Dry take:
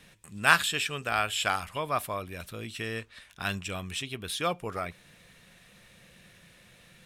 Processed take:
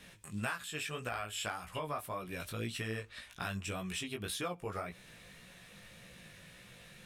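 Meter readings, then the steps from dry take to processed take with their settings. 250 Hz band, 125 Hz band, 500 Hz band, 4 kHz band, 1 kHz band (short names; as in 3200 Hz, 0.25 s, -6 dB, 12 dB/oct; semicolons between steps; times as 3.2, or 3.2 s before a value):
-3.0 dB, -3.5 dB, -6.5 dB, -10.0 dB, -11.0 dB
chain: dynamic EQ 3500 Hz, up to -5 dB, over -42 dBFS, Q 0.78; compressor 8:1, threshold -36 dBFS, peak gain reduction 20 dB; chorus 1.8 Hz, delay 16 ms, depth 4 ms; gain +4 dB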